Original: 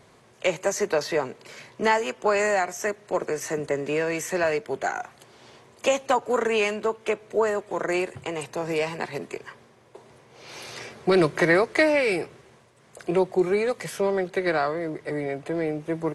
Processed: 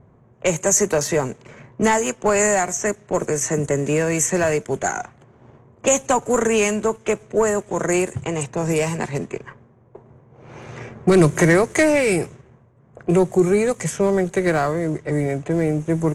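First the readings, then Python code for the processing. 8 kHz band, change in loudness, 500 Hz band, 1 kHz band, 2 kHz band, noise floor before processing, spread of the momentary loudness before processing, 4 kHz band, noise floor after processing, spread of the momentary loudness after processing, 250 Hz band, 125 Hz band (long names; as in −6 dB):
+14.5 dB, +5.5 dB, +4.5 dB, +3.0 dB, +2.0 dB, −56 dBFS, 15 LU, +1.0 dB, −53 dBFS, 10 LU, +8.0 dB, +13.0 dB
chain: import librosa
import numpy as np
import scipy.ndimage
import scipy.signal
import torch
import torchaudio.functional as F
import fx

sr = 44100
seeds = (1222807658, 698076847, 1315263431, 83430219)

y = fx.leveller(x, sr, passes=1)
y = fx.bass_treble(y, sr, bass_db=12, treble_db=2)
y = fx.env_lowpass(y, sr, base_hz=1100.0, full_db=-17.0)
y = fx.high_shelf_res(y, sr, hz=5600.0, db=6.5, q=3.0)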